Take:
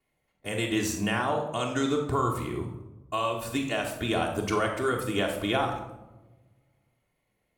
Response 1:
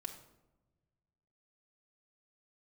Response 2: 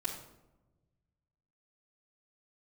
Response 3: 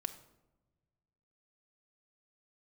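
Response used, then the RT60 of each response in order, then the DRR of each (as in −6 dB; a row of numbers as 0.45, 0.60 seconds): 2; 1.1, 1.0, 1.1 seconds; 0.5, −8.0, 5.5 decibels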